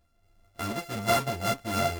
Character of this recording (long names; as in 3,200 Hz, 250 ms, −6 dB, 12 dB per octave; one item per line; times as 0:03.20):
a buzz of ramps at a fixed pitch in blocks of 64 samples
sample-and-hold tremolo 4.2 Hz
a shimmering, thickened sound